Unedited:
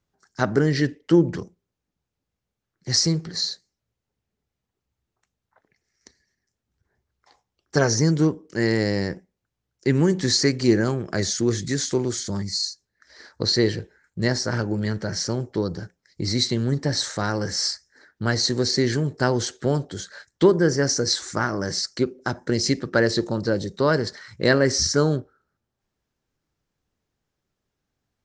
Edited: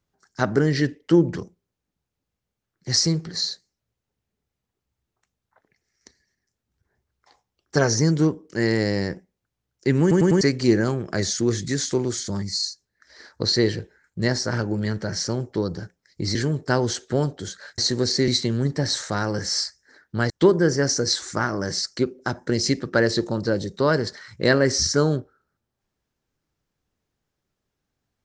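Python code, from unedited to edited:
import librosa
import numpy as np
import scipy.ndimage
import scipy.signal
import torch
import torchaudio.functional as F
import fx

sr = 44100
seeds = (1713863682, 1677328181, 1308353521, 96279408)

y = fx.edit(x, sr, fx.stutter_over(start_s=10.01, slice_s=0.1, count=4),
    fx.swap(start_s=16.35, length_s=2.02, other_s=18.87, other_length_s=1.43), tone=tone)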